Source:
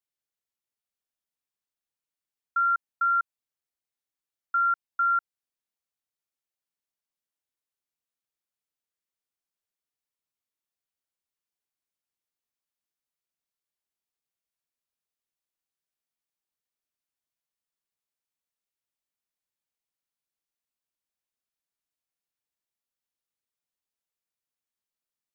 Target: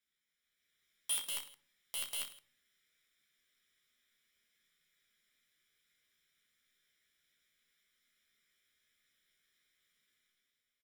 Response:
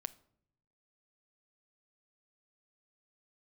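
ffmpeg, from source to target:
-filter_complex "[0:a]equalizer=f=1100:w=0.96:g=14,aecho=1:1:1.3:0.82,alimiter=limit=0.133:level=0:latency=1:release=14,dynaudnorm=f=230:g=13:m=2.82,aeval=exprs='(mod(18.8*val(0)+1,2)-1)/18.8':c=same,aecho=1:1:30|75|142.5|243.8|395.6:0.631|0.398|0.251|0.158|0.1[s0];[1:a]atrim=start_sample=2205,asetrate=26019,aresample=44100[s1];[s0][s1]afir=irnorm=-1:irlink=0,asetrate=103194,aresample=44100,volume=0.841"

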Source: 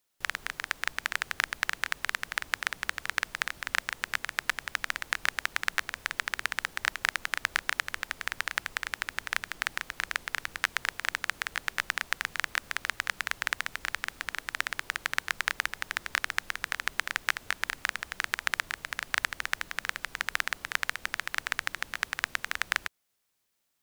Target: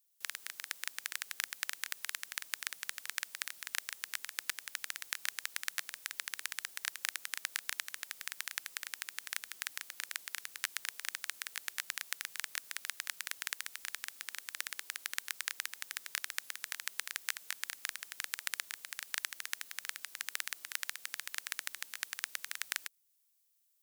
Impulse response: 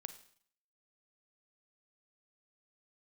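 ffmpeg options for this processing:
-filter_complex "[0:a]aderivative,acrossover=split=580[s0][s1];[s0]acontrast=86[s2];[s2][s1]amix=inputs=2:normalize=0"

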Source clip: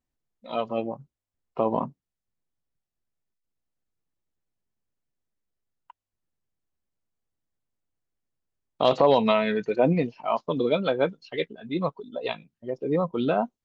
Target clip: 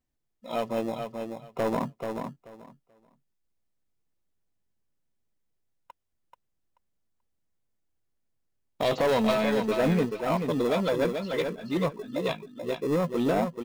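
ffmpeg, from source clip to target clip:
-filter_complex "[0:a]asplit=2[s0][s1];[s1]acrusher=samples=29:mix=1:aa=0.000001,volume=0.282[s2];[s0][s2]amix=inputs=2:normalize=0,asoftclip=type=tanh:threshold=0.106,aecho=1:1:434|868|1302:0.501|0.0902|0.0162"

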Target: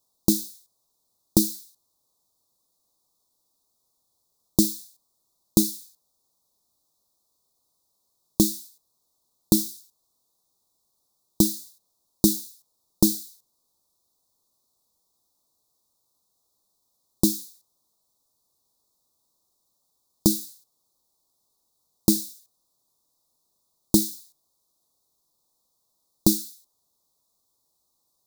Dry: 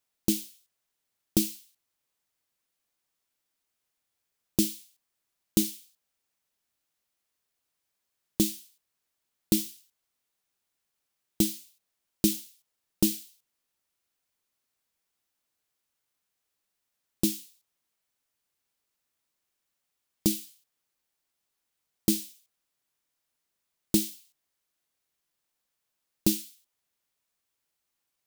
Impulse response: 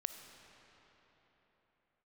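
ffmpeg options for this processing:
-filter_complex "[0:a]asplit=2[s0][s1];[s1]acompressor=threshold=0.0282:ratio=6,volume=1.06[s2];[s0][s2]amix=inputs=2:normalize=0,asuperstop=centerf=2100:order=12:qfactor=0.84,volume=1.41"

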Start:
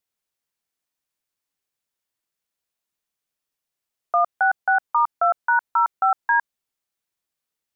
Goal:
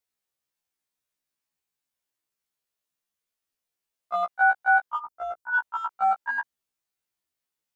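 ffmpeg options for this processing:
-filter_complex "[0:a]asplit=3[s0][s1][s2];[s0]afade=t=out:st=4.97:d=0.02[s3];[s1]equalizer=f=1500:w=0.41:g=-10,afade=t=in:st=4.97:d=0.02,afade=t=out:st=5.53:d=0.02[s4];[s2]afade=t=in:st=5.53:d=0.02[s5];[s3][s4][s5]amix=inputs=3:normalize=0,acrossover=split=690[s6][s7];[s6]asoftclip=type=hard:threshold=0.0237[s8];[s8][s7]amix=inputs=2:normalize=0,afftfilt=real='re*1.73*eq(mod(b,3),0)':imag='im*1.73*eq(mod(b,3),0)':win_size=2048:overlap=0.75"

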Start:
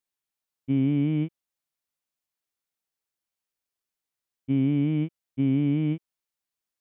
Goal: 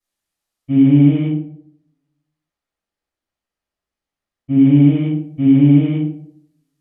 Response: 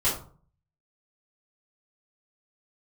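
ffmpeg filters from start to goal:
-filter_complex "[0:a]asettb=1/sr,asplit=3[s0][s1][s2];[s0]atrim=end=1.254[s3];[s1]atrim=start=1.25:end=4.59,asetpts=PTS-STARTPTS,afade=t=in:d=0.004:c=qsin,afade=t=out:st=3.336:d=0.004:c=qsin,lowpass=f=2100:p=1[s4];[s2]atrim=start=4.586[s5];[s3][s4]acrossfade=d=0.004:c1=hsin:c2=qsin[s6];[s6][s5]acrossfade=d=0.004:c1=qsin:c2=hsin[s7];[1:a]atrim=start_sample=2205,asetrate=26901,aresample=44100[s8];[s7][s8]afir=irnorm=-1:irlink=0,volume=0.562"

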